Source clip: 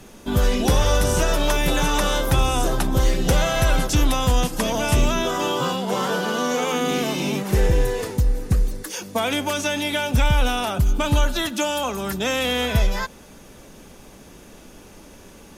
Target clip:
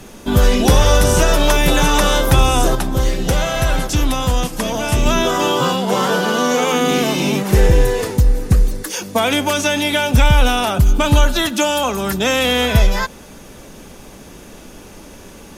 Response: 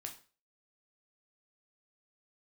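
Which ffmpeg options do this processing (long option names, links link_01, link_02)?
-filter_complex "[0:a]asettb=1/sr,asplit=3[link_01][link_02][link_03];[link_01]atrim=end=2.754[link_04];[link_02]atrim=start=2.75:end=5.06,asetpts=PTS-STARTPTS,afade=type=in:duration=0.004:curve=qsin,afade=type=out:start_time=2.306:duration=0.004:curve=qsin,flanger=delay=8.9:depth=6.7:regen=85:speed=1.8:shape=sinusoidal[link_05];[link_03]atrim=start=5.056[link_06];[link_04][link_05]acrossfade=duration=0.004:curve1=hsin:curve2=qsin[link_07];[link_07][link_06]acrossfade=duration=0.004:curve1=qsin:curve2=hsin,volume=6.5dB"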